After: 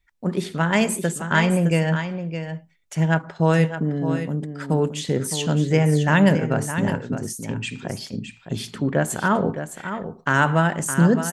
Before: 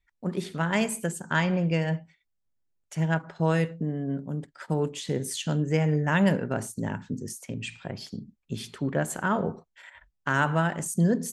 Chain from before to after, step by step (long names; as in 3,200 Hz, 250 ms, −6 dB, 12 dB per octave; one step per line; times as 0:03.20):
single-tap delay 613 ms −9.5 dB
level +6 dB